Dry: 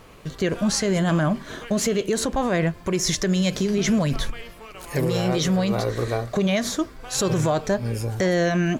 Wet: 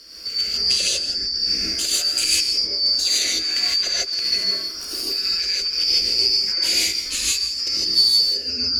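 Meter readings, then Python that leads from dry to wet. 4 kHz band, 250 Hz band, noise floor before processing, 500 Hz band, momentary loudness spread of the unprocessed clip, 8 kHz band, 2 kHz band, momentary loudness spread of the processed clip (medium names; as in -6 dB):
+16.0 dB, -18.5 dB, -44 dBFS, -16.5 dB, 7 LU, +6.0 dB, -0.5 dB, 5 LU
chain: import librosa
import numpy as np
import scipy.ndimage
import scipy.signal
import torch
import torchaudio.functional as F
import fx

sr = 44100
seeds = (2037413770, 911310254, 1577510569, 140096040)

y = fx.band_shuffle(x, sr, order='2341')
y = fx.fixed_phaser(y, sr, hz=350.0, stages=4)
y = fx.comb_fb(y, sr, f0_hz=65.0, decay_s=0.85, harmonics='all', damping=0.0, mix_pct=70)
y = fx.over_compress(y, sr, threshold_db=-34.0, ratio=-0.5)
y = y + 10.0 ** (-15.5 / 20.0) * np.pad(y, (int(170 * sr / 1000.0), 0))[:len(y)]
y = fx.rev_gated(y, sr, seeds[0], gate_ms=180, shape='rising', drr_db=-6.0)
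y = y * librosa.db_to_amplitude(6.5)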